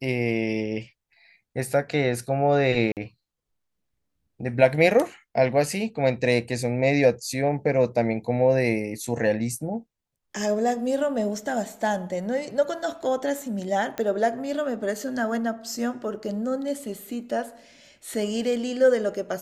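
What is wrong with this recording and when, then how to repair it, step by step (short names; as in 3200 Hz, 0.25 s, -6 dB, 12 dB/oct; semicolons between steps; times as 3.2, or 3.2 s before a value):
2.92–2.97 gap 48 ms
13.98 pop -15 dBFS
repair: de-click; interpolate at 2.92, 48 ms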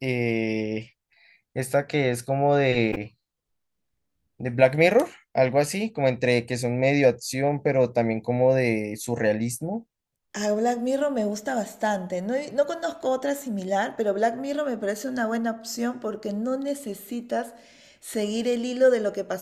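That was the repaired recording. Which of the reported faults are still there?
none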